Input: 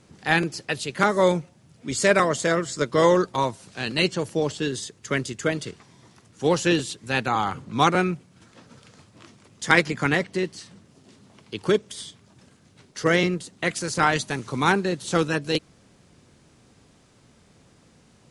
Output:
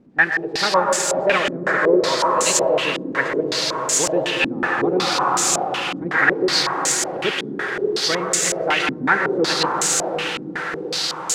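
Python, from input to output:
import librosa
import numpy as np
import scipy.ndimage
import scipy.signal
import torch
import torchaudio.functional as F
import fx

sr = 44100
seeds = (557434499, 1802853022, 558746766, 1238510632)

p1 = x + 0.5 * 10.0 ** (-14.5 / 20.0) * np.diff(np.sign(x), prepend=np.sign(x[:1]))
p2 = fx.highpass(p1, sr, hz=48.0, slope=6)
p3 = fx.low_shelf(p2, sr, hz=270.0, db=-11.5)
p4 = fx.rider(p3, sr, range_db=10, speed_s=2.0)
p5 = fx.cheby_harmonics(p4, sr, harmonics=(2,), levels_db=(-26,), full_scale_db=-2.5)
p6 = fx.stretch_vocoder(p5, sr, factor=0.62)
p7 = p6 + fx.echo_diffused(p6, sr, ms=653, feedback_pct=61, wet_db=-8.0, dry=0)
p8 = fx.rev_plate(p7, sr, seeds[0], rt60_s=5.0, hf_ratio=0.5, predelay_ms=105, drr_db=0.5)
y = fx.filter_held_lowpass(p8, sr, hz=5.4, low_hz=260.0, high_hz=7200.0)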